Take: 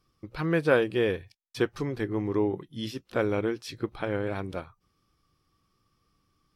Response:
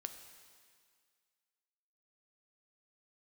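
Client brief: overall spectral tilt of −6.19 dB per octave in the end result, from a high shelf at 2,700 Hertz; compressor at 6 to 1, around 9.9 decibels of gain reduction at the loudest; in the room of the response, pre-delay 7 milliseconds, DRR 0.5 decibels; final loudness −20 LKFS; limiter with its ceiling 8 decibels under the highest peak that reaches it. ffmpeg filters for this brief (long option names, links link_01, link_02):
-filter_complex "[0:a]highshelf=frequency=2700:gain=-7,acompressor=threshold=-28dB:ratio=6,alimiter=level_in=1.5dB:limit=-24dB:level=0:latency=1,volume=-1.5dB,asplit=2[link_01][link_02];[1:a]atrim=start_sample=2205,adelay=7[link_03];[link_02][link_03]afir=irnorm=-1:irlink=0,volume=2.5dB[link_04];[link_01][link_04]amix=inputs=2:normalize=0,volume=14.5dB"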